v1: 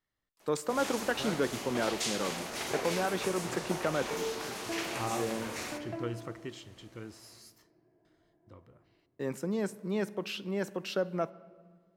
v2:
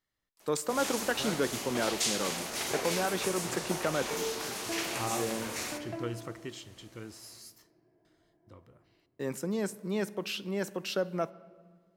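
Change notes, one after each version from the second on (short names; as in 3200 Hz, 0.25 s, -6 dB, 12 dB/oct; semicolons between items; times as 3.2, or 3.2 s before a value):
master: add high shelf 4300 Hz +7 dB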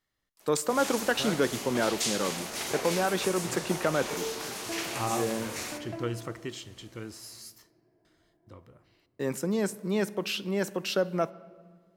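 speech +4.0 dB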